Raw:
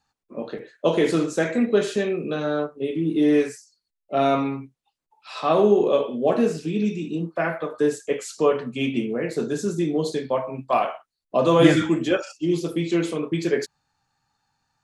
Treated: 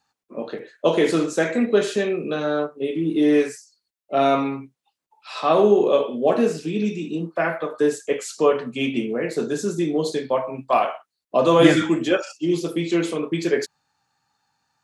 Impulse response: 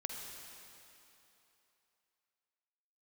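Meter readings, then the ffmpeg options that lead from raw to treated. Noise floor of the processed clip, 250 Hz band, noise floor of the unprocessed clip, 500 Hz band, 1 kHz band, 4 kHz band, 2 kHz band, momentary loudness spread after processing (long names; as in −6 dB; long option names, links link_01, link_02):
−83 dBFS, +0.5 dB, −82 dBFS, +1.5 dB, +2.5 dB, +2.5 dB, +2.5 dB, 10 LU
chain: -af "highpass=frequency=200:poles=1,volume=2.5dB"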